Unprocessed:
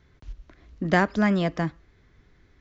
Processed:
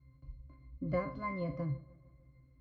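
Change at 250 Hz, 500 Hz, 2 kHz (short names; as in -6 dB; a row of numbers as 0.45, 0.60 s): -16.0, -11.0, -19.5 dB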